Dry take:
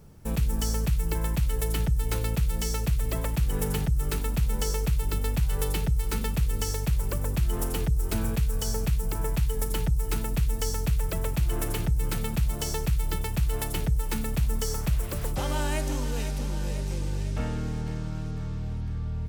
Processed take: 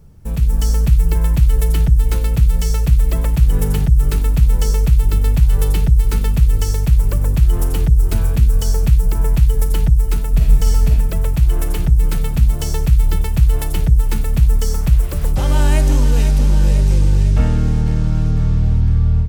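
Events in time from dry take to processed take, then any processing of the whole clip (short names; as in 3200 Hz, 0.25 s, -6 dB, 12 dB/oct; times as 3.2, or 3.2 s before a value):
10.3–10.88 reverb throw, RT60 0.94 s, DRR 1 dB
whole clip: low shelf 160 Hz +11 dB; de-hum 110.1 Hz, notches 3; AGC; gain -1 dB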